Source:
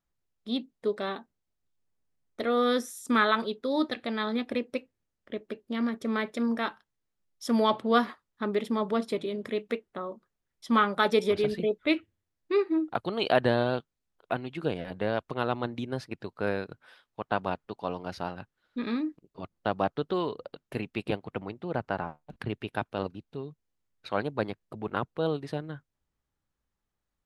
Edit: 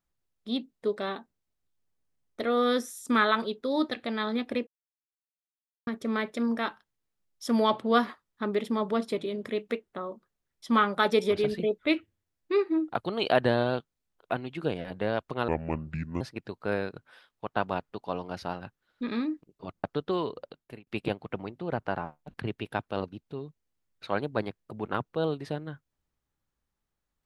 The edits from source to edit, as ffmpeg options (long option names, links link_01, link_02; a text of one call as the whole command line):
ffmpeg -i in.wav -filter_complex "[0:a]asplit=7[link_01][link_02][link_03][link_04][link_05][link_06][link_07];[link_01]atrim=end=4.67,asetpts=PTS-STARTPTS,afade=type=out:start_time=4.666:duration=0.004:curve=hsin[link_08];[link_02]atrim=start=4.67:end=5.87,asetpts=PTS-STARTPTS,volume=0[link_09];[link_03]atrim=start=5.87:end=15.484,asetpts=PTS-STARTPTS,afade=type=in:duration=0.004:curve=hsin[link_10];[link_04]atrim=start=15.48:end=15.96,asetpts=PTS-STARTPTS,asetrate=29106,aresample=44100[link_11];[link_05]atrim=start=15.956:end=19.592[link_12];[link_06]atrim=start=19.858:end=20.89,asetpts=PTS-STARTPTS,afade=type=out:start_time=0.572:duration=0.46[link_13];[link_07]atrim=start=20.89,asetpts=PTS-STARTPTS,afade=type=in:duration=0.004:curve=hsin[link_14];[link_08][link_09][link_10]concat=n=3:v=0:a=1[link_15];[link_15][link_11]acrossfade=duration=0.004:curve1=hsin:curve2=hsin[link_16];[link_16][link_12]acrossfade=duration=0.004:curve1=hsin:curve2=hsin[link_17];[link_13][link_14]concat=n=2:v=0:a=1[link_18];[link_17][link_18]acrossfade=duration=0.004:curve1=hsin:curve2=hsin" out.wav